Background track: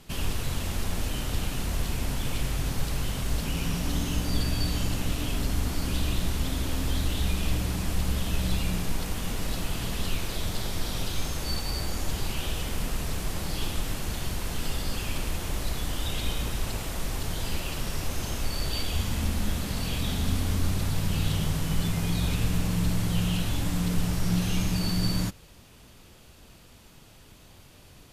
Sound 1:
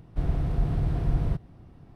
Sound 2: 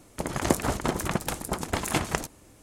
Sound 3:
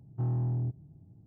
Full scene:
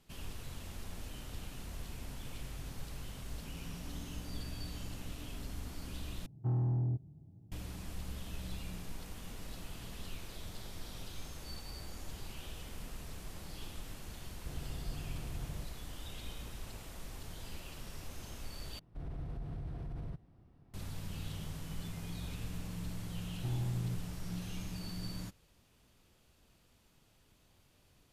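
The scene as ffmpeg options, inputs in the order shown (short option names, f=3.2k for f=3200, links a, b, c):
-filter_complex "[3:a]asplit=2[a][b];[1:a]asplit=2[c][d];[0:a]volume=-15.5dB[e];[d]alimiter=limit=-22.5dB:level=0:latency=1:release=38[f];[e]asplit=3[g][h][i];[g]atrim=end=6.264[j];[a]atrim=end=1.26,asetpts=PTS-STARTPTS,volume=-2dB[k];[h]atrim=start=7.516:end=18.794[l];[f]atrim=end=1.95,asetpts=PTS-STARTPTS,volume=-12.5dB[m];[i]atrim=start=20.736[n];[c]atrim=end=1.95,asetpts=PTS-STARTPTS,volume=-17.5dB,afade=t=in:d=0.004:c=hsin,afade=t=out:st=1.946:d=0.004:c=hsin,adelay=629748S[o];[b]atrim=end=1.26,asetpts=PTS-STARTPTS,volume=-6.5dB,afade=t=in:d=0.004:c=hsin,afade=t=out:st=1.256:d=0.004:c=hsin,adelay=23250[p];[j][k]acrossfade=d=0.004:c1=hsin:c2=hsin[q];[q][l]acrossfade=d=0.004:c1=hsin:c2=hsin[r];[r][m]acrossfade=d=0.004:c1=hsin:c2=hsin[s];[s][n]acrossfade=d=0.004:c1=hsin:c2=hsin[t];[t][o][p]amix=inputs=3:normalize=0"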